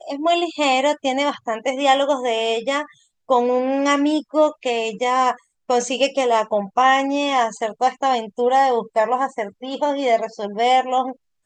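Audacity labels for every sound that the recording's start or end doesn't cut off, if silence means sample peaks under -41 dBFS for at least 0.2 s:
3.290000	5.390000	sound
5.690000	11.130000	sound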